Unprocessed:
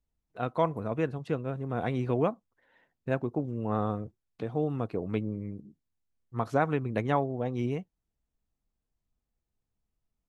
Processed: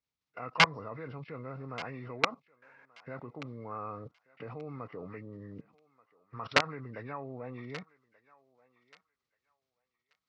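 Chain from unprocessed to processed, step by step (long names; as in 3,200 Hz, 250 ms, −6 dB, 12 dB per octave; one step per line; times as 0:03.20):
hearing-aid frequency compression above 1,300 Hz 1.5 to 1
high-shelf EQ 3,700 Hz +7.5 dB
output level in coarse steps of 23 dB
wrap-around overflow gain 21.5 dB
loudspeaker in its box 150–5,300 Hz, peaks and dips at 210 Hz −9 dB, 350 Hz −8 dB, 710 Hz −5 dB, 1,200 Hz +7 dB, 2,200 Hz +6 dB
feedback echo with a high-pass in the loop 1,182 ms, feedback 20%, high-pass 820 Hz, level −19 dB
level +8 dB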